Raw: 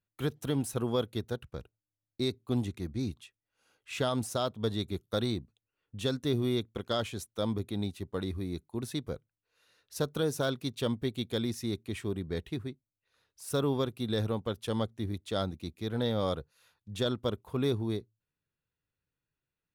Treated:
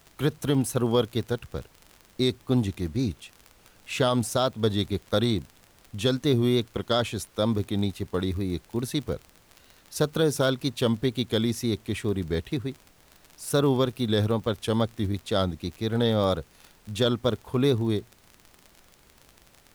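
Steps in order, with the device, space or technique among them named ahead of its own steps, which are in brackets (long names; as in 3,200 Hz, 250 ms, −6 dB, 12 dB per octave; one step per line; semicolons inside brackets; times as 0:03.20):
vinyl LP (tape wow and flutter 47 cents; surface crackle 39 per second −41 dBFS; pink noise bed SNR 31 dB)
level +7 dB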